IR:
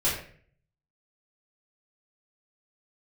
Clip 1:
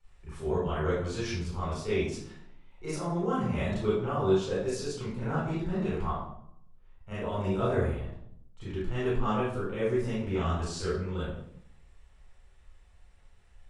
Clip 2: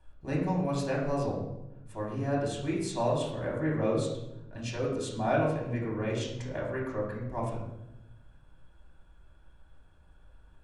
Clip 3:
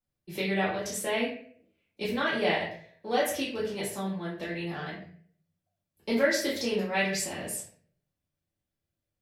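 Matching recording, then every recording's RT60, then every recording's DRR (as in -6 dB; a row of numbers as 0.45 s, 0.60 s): 3; 0.70 s, 0.90 s, 0.50 s; -11.5 dB, -5.0 dB, -9.0 dB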